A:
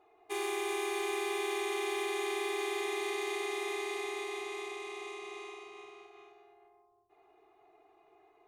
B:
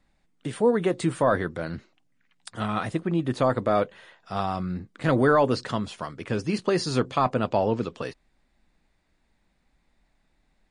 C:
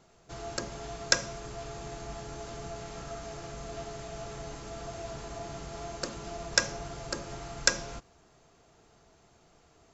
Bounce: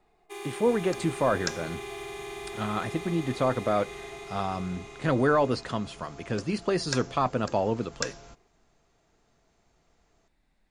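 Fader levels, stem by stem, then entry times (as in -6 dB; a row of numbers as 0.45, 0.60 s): -4.5, -3.0, -8.0 dB; 0.00, 0.00, 0.35 s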